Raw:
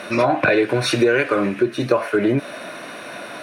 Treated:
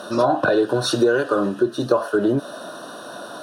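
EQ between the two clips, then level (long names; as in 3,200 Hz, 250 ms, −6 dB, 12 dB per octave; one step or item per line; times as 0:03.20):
Butterworth band-reject 2,200 Hz, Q 1.3
low-shelf EQ 98 Hz −9 dB
0.0 dB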